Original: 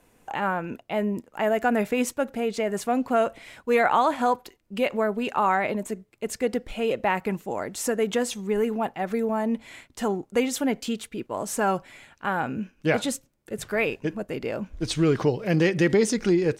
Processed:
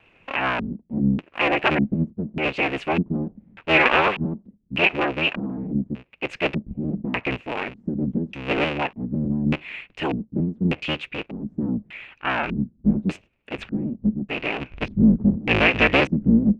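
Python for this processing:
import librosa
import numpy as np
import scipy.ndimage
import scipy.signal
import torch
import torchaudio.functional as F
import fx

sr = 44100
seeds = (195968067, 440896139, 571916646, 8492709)

y = fx.cycle_switch(x, sr, every=3, mode='inverted')
y = fx.filter_lfo_lowpass(y, sr, shape='square', hz=0.84, low_hz=210.0, high_hz=2600.0, q=6.5)
y = fx.vibrato(y, sr, rate_hz=4.4, depth_cents=39.0)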